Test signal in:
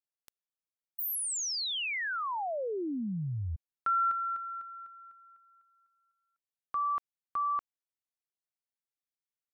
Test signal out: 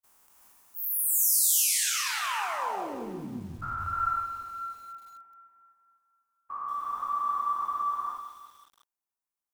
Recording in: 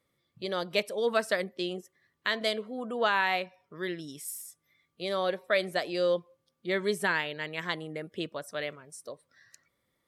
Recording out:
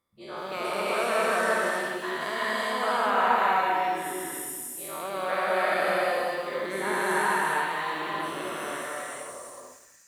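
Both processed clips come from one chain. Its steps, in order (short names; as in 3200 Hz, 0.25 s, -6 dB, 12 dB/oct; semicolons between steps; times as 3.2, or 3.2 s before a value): spectral dilation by 0.48 s; ten-band EQ 125 Hz -10 dB, 500 Hz -6 dB, 1000 Hz +7 dB, 2000 Hz -5 dB, 4000 Hz -10 dB; non-linear reverb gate 0.4 s rising, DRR -3 dB; lo-fi delay 0.182 s, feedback 55%, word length 7-bit, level -10.5 dB; gain -7.5 dB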